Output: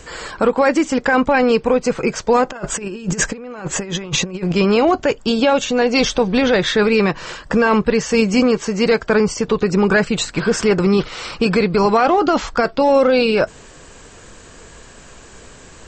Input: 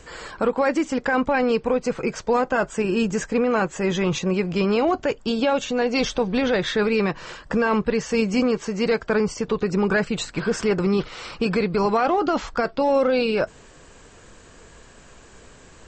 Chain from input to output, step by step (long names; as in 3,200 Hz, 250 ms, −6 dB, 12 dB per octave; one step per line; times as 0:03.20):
high-shelf EQ 4,100 Hz +3.5 dB
0:02.49–0:04.52: compressor whose output falls as the input rises −28 dBFS, ratio −0.5
level +6 dB